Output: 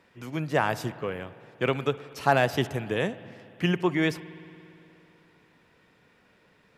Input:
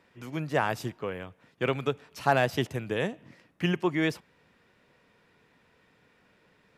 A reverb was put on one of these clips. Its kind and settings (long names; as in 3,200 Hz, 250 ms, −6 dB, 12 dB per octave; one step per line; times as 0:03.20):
spring reverb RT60 2.9 s, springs 57 ms, chirp 25 ms, DRR 16 dB
level +2 dB